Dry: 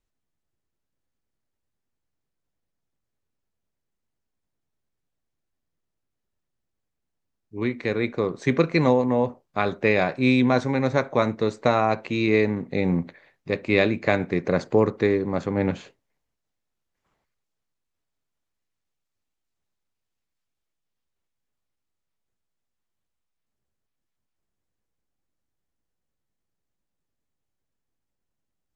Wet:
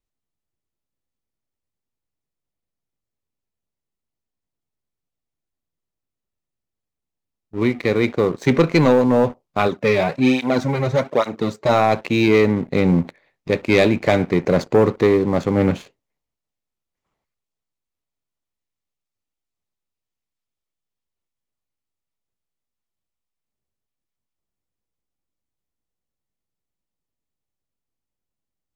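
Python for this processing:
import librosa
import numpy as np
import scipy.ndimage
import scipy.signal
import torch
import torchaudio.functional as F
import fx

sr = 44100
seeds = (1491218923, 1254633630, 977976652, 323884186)

y = fx.peak_eq(x, sr, hz=1600.0, db=-5.0, octaves=0.3)
y = fx.leveller(y, sr, passes=2)
y = fx.flanger_cancel(y, sr, hz=1.2, depth_ms=4.3, at=(9.67, 11.68), fade=0.02)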